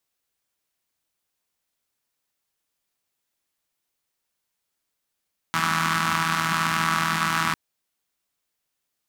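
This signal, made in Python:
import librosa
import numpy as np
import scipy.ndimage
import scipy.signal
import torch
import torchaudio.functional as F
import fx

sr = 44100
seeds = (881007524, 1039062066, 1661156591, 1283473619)

y = fx.engine_four(sr, seeds[0], length_s=2.0, rpm=4900, resonances_hz=(200.0, 1200.0))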